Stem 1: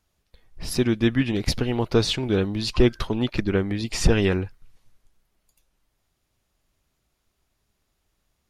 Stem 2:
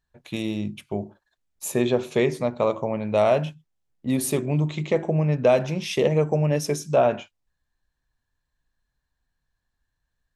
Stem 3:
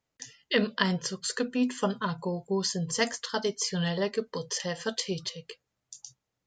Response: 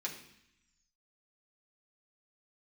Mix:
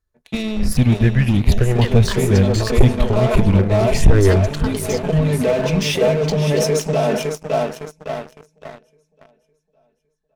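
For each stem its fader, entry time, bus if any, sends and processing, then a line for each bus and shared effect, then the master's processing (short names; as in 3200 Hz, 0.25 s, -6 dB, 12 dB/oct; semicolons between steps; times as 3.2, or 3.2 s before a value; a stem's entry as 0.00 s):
-6.0 dB, 0.00 s, no bus, no send, echo send -17.5 dB, low shelf 330 Hz +11 dB; step phaser 3.9 Hz 780–1600 Hz
-2.5 dB, 0.00 s, bus A, no send, echo send -12.5 dB, comb 4.6 ms, depth 90%; auto duck -15 dB, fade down 1.20 s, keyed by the first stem
0.0 dB, 1.30 s, bus A, no send, no echo send, Wiener smoothing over 9 samples; compressor, threshold -36 dBFS, peak gain reduction 15 dB
bus A: 0.0 dB, high shelf 9100 Hz -10 dB; limiter -22.5 dBFS, peak gain reduction 15 dB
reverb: off
echo: feedback echo 0.559 s, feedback 50%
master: sample leveller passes 3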